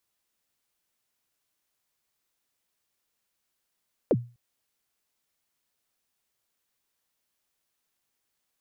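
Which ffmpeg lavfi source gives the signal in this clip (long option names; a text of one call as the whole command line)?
ffmpeg -f lavfi -i "aevalsrc='0.178*pow(10,-3*t/0.32)*sin(2*PI*(600*0.045/log(120/600)*(exp(log(120/600)*min(t,0.045)/0.045)-1)+120*max(t-0.045,0)))':duration=0.25:sample_rate=44100" out.wav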